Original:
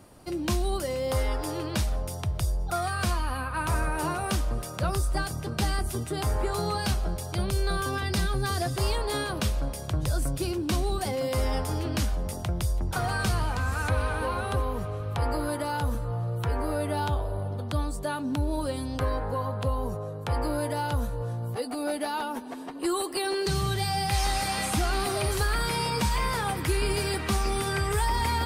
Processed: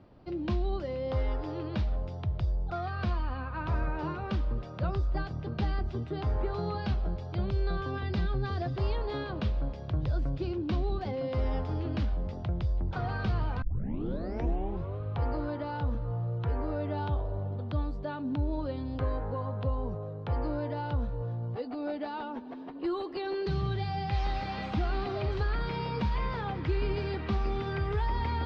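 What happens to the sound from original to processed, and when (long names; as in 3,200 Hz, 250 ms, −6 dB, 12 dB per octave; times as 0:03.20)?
0:04.04–0:04.62: notch filter 700 Hz, Q 7.8
0:13.62: tape start 1.36 s
whole clip: inverse Chebyshev low-pass filter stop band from 9,500 Hz, stop band 50 dB; tilt shelving filter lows +4 dB, about 760 Hz; level −6 dB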